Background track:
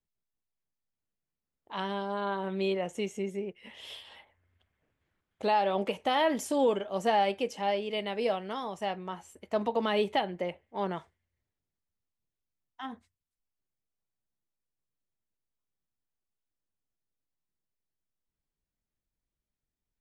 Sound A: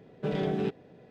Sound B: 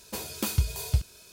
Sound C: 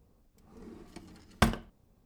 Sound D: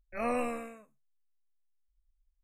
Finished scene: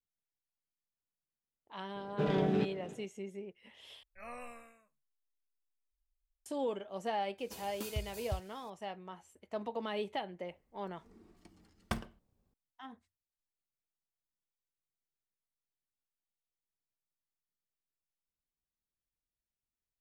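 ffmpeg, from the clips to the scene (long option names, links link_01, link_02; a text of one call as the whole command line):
ffmpeg -i bed.wav -i cue0.wav -i cue1.wav -i cue2.wav -i cue3.wav -filter_complex "[0:a]volume=-9.5dB[link_01];[1:a]aecho=1:1:298:0.133[link_02];[4:a]equalizer=frequency=320:width_type=o:width=1.4:gain=-13[link_03];[link_01]asplit=2[link_04][link_05];[link_04]atrim=end=4.034[link_06];[link_03]atrim=end=2.43,asetpts=PTS-STARTPTS,volume=-11dB[link_07];[link_05]atrim=start=6.456[link_08];[link_02]atrim=end=1.1,asetpts=PTS-STARTPTS,volume=-1.5dB,afade=type=in:duration=0.004:curve=hsin,afade=type=out:start_time=1.096:duration=0.004:curve=hsin,adelay=1950[link_09];[2:a]atrim=end=1.32,asetpts=PTS-STARTPTS,volume=-14dB,afade=type=in:duration=0.004:curve=hsin,afade=type=out:start_time=1.316:duration=0.004:curve=hsin,adelay=325458S[link_10];[3:a]atrim=end=2.05,asetpts=PTS-STARTPTS,volume=-11.5dB,afade=type=in:duration=0.004:curve=hsin,afade=type=out:start_time=2.046:duration=0.004:curve=hsin,adelay=10490[link_11];[link_06][link_07]acrossfade=duration=0.004:curve1=hsin:curve2=hsin[link_12];[link_12][link_08]acrossfade=duration=0.004:curve1=hsin:curve2=hsin[link_13];[link_13][link_09][link_10][link_11]amix=inputs=4:normalize=0" out.wav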